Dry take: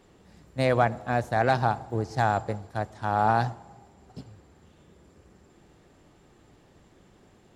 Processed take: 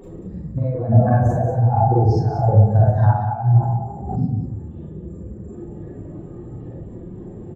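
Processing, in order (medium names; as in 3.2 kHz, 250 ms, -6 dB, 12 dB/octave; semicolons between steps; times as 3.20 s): spectral contrast enhancement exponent 2.4; compressor with a negative ratio -32 dBFS, ratio -0.5; delay 186 ms -8.5 dB; reverberation RT60 0.50 s, pre-delay 33 ms, DRR -6 dB; 3.59–4.19 s: swell ahead of each attack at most 57 dB/s; trim +9 dB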